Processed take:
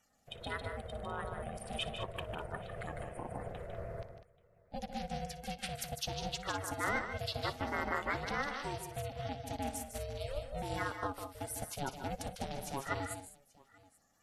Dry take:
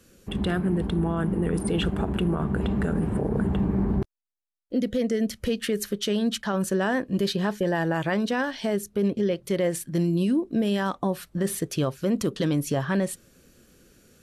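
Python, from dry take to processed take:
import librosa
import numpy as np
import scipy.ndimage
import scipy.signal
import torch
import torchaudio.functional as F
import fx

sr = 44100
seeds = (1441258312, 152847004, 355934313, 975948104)

y = fx.spec_quant(x, sr, step_db=30)
y = fx.highpass(y, sr, hz=670.0, slope=6)
y = fx.echo_multitap(y, sr, ms=(59, 151, 200, 833), db=(-16.5, -6.0, -10.0, -20.0))
y = y * np.sin(2.0 * np.pi * 280.0 * np.arange(len(y)) / sr)
y = fx.upward_expand(y, sr, threshold_db=-40.0, expansion=1.5)
y = y * 10.0 ** (-3.5 / 20.0)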